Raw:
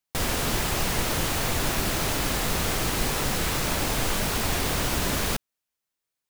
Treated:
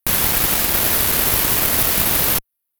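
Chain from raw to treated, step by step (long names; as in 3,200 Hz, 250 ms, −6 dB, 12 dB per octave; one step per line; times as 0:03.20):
high shelf with overshoot 4,100 Hz +10 dB, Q 3
harmonic generator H 6 −9 dB, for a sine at −4.5 dBFS
change of speed 2.25×
level +1 dB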